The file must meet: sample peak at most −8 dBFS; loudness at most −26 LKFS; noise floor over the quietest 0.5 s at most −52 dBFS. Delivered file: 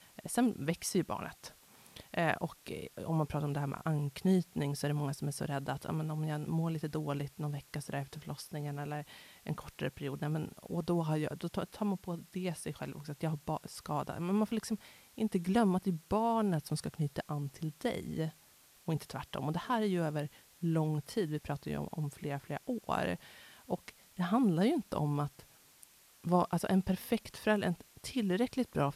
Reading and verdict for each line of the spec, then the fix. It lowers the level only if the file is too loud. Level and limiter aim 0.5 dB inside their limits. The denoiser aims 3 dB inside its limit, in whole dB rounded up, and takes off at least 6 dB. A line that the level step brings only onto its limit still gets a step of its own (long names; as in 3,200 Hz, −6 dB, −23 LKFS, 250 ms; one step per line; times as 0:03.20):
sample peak −15.0 dBFS: in spec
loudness −35.5 LKFS: in spec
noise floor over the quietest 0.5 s −63 dBFS: in spec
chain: no processing needed